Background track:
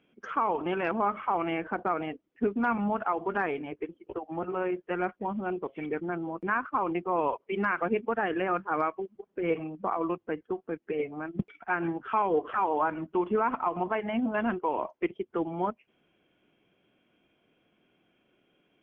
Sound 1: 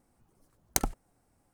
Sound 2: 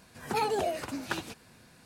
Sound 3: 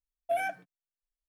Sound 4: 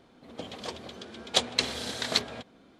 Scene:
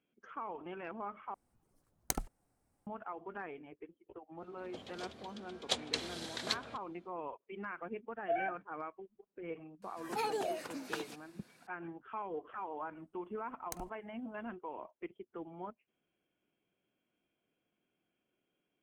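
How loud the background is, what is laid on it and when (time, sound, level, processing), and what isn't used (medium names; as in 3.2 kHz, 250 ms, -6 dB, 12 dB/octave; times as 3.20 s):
background track -15 dB
1.34 s: replace with 1 -7.5 dB
4.35 s: add 4 -9.5 dB, fades 0.10 s
7.99 s: add 3 -4.5 dB + low-pass 2.4 kHz 24 dB/octave
9.82 s: add 2 -6.5 dB + high-pass 200 Hz
12.96 s: add 1 -17.5 dB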